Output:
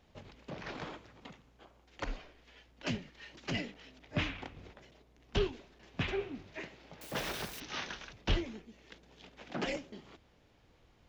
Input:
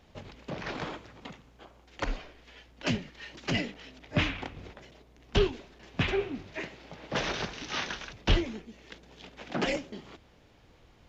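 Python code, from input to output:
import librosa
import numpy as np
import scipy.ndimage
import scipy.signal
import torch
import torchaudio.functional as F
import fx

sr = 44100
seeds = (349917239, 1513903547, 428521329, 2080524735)

y = fx.crossing_spikes(x, sr, level_db=-32.5, at=(7.01, 7.6))
y = F.gain(torch.from_numpy(y), -6.5).numpy()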